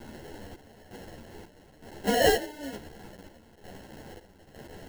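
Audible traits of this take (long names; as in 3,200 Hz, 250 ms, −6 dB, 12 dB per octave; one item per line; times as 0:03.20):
a quantiser's noise floor 8 bits, dither triangular
chopped level 1.1 Hz, depth 65%, duty 60%
aliases and images of a low sample rate 1,200 Hz, jitter 0%
a shimmering, thickened sound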